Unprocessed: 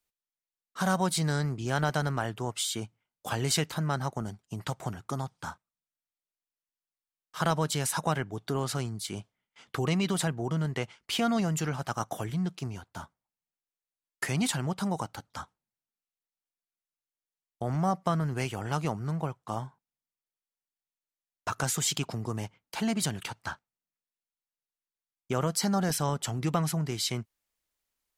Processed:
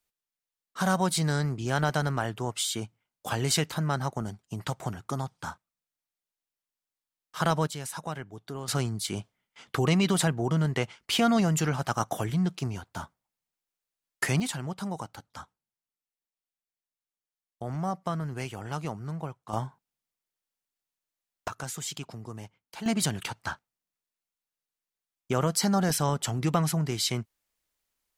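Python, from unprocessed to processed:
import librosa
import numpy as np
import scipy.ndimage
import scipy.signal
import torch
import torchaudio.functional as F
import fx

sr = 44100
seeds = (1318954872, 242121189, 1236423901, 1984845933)

y = fx.gain(x, sr, db=fx.steps((0.0, 1.5), (7.67, -7.0), (8.68, 4.0), (14.4, -3.5), (19.53, 4.0), (21.48, -7.0), (22.86, 2.5)))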